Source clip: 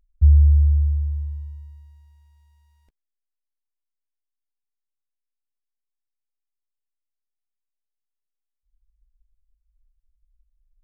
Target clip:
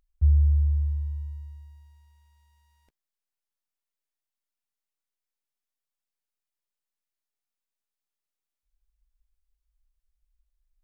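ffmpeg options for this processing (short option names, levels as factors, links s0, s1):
-af "lowshelf=f=150:g=-10,volume=1.19"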